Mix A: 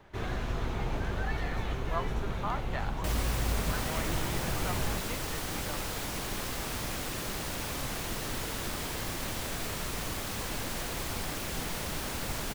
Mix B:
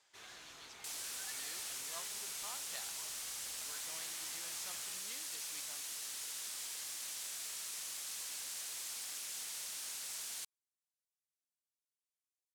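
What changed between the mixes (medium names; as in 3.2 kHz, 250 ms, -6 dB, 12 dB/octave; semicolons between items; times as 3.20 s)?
speech: remove band-pass filter 1.4 kHz, Q 0.92; second sound: entry -2.20 s; master: add band-pass filter 8 kHz, Q 0.99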